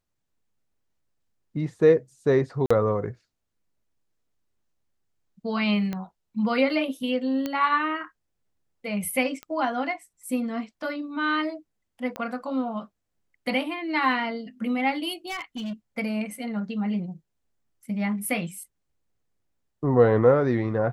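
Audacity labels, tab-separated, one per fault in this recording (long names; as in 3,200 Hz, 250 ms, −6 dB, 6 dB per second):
2.660000	2.710000	drop-out 45 ms
5.930000	5.930000	click −18 dBFS
7.460000	7.460000	click −15 dBFS
9.430000	9.430000	click −22 dBFS
12.160000	12.160000	click −19 dBFS
15.270000	15.730000	clipping −29 dBFS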